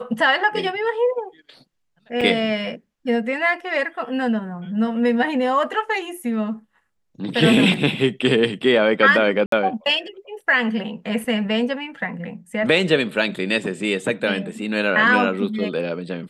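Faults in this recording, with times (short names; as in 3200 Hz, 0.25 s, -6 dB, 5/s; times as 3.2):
2.21 gap 4.3 ms
9.46–9.52 gap 63 ms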